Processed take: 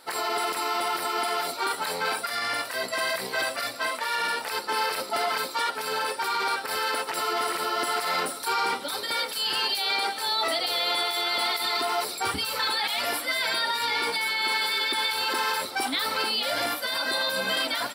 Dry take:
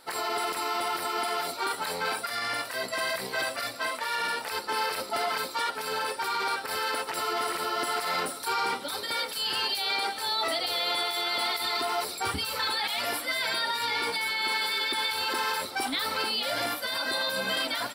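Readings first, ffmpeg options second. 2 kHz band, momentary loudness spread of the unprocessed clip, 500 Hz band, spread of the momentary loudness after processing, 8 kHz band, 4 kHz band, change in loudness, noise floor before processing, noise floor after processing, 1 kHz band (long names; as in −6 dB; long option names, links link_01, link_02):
+2.5 dB, 4 LU, +2.0 dB, 4 LU, +2.5 dB, +2.5 dB, +2.5 dB, −39 dBFS, −37 dBFS, +2.5 dB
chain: -af "lowshelf=frequency=91:gain=-10.5,volume=2.5dB"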